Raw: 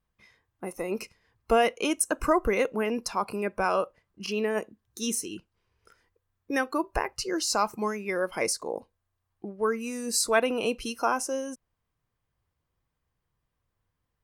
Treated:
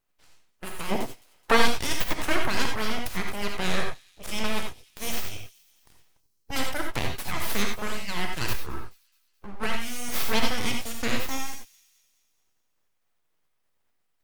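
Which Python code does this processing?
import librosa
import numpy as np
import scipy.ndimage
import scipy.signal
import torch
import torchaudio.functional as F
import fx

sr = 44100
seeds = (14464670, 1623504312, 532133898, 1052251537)

y = fx.spec_clip(x, sr, under_db=17)
y = np.abs(y)
y = fx.peak_eq(y, sr, hz=fx.line((0.89, 290.0), (1.56, 1100.0)), db=10.5, octaves=2.6, at=(0.89, 1.56), fade=0.02)
y = fx.echo_wet_highpass(y, sr, ms=213, feedback_pct=50, hz=3700.0, wet_db=-19)
y = fx.rev_gated(y, sr, seeds[0], gate_ms=110, shape='rising', drr_db=2.5)
y = fx.spec_box(y, sr, start_s=6.2, length_s=0.31, low_hz=530.0, high_hz=3900.0, gain_db=-9)
y = fx.ensemble(y, sr, at=(8.53, 9.6))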